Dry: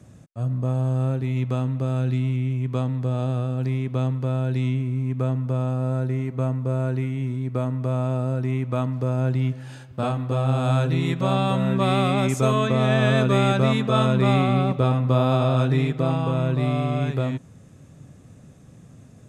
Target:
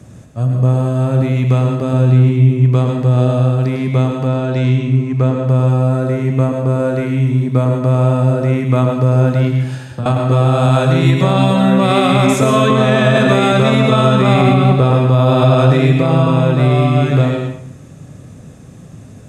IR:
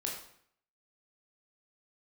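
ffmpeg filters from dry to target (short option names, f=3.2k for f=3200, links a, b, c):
-filter_complex "[0:a]asettb=1/sr,asplit=3[a][b][c];[a]atrim=end=1.934[d];[b]atrim=start=1.93:end=2.65,asetpts=PTS-STARTPTS,afade=t=in:d=0.004:c=qsin,afade=t=out:st=0.716:d=0.004:c=qsin,tiltshelf=f=970:g=3.5[e];[c]atrim=start=2.646[f];[d][e]acrossfade=d=0.004:c1=hsin:c2=qsin[g];[g][f]acrossfade=d=0.004:c1=qsin:c2=hsin,asettb=1/sr,asplit=3[h][i][j];[h]atrim=end=4.274[k];[i]atrim=start=4.27:end=5.42,asetpts=PTS-STARTPTS,afade=t=in:d=0.004:c=qsin,afade=t=out:st=1.146:d=0.004:c=qsin,lowpass=f=7.8k:w=0.5412,lowpass=f=7.8k:w=1.3066[l];[j]atrim=start=5.416[m];[k][l]acrossfade=d=0.004:c1=hsin:c2=qsin[n];[n][m]acrossfade=d=0.004:c1=qsin:c2=hsin,asettb=1/sr,asplit=3[o][p][q];[o]atrim=end=9.644[r];[p]atrim=start=9.64:end=10.06,asetpts=PTS-STARTPTS,afade=t=in:d=0.004:c=qsin,afade=t=out:st=0.416:d=0.004:c=qsin,acrossover=split=180[s][t];[t]acompressor=threshold=-39dB:ratio=6[u];[s][u]amix=inputs=2:normalize=0[v];[q]atrim=start=10.056[w];[r][v]acrossfade=d=0.004:c1=hsin:c2=qsin[x];[x][w]acrossfade=d=0.004:c1=qsin:c2=hsin,asplit=2[y][z];[1:a]atrim=start_sample=2205,adelay=104[aa];[z][aa]afir=irnorm=-1:irlink=0,volume=-5dB[ab];[y][ab]amix=inputs=2:normalize=0,alimiter=level_in=10.5dB:limit=-1dB:release=50:level=0:latency=1,volume=-1dB"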